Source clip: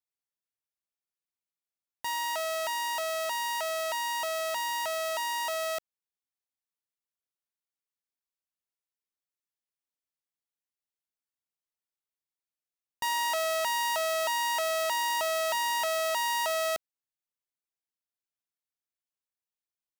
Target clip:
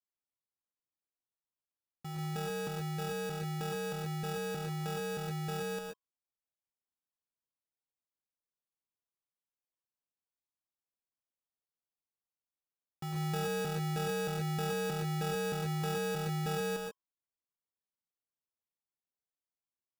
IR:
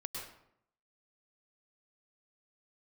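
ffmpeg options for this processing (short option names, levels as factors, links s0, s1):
-filter_complex "[0:a]lowpass=f=2700:t=q:w=0.5098,lowpass=f=2700:t=q:w=0.6013,lowpass=f=2700:t=q:w=0.9,lowpass=f=2700:t=q:w=2.563,afreqshift=-3200[s0];[1:a]atrim=start_sample=2205,atrim=end_sample=6615[s1];[s0][s1]afir=irnorm=-1:irlink=0,acrusher=samples=21:mix=1:aa=0.000001,volume=0.631"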